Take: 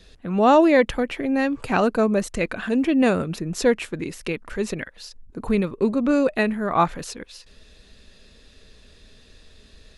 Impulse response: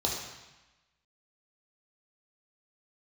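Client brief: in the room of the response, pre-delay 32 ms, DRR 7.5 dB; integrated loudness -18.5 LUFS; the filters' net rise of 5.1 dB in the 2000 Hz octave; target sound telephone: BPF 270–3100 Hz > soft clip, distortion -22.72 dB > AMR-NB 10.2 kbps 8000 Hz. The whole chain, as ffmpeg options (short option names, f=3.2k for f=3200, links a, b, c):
-filter_complex "[0:a]equalizer=f=2k:t=o:g=7,asplit=2[a][b];[1:a]atrim=start_sample=2205,adelay=32[c];[b][c]afir=irnorm=-1:irlink=0,volume=-15.5dB[d];[a][d]amix=inputs=2:normalize=0,highpass=270,lowpass=3.1k,asoftclip=threshold=-4.5dB,volume=3.5dB" -ar 8000 -c:a libopencore_amrnb -b:a 10200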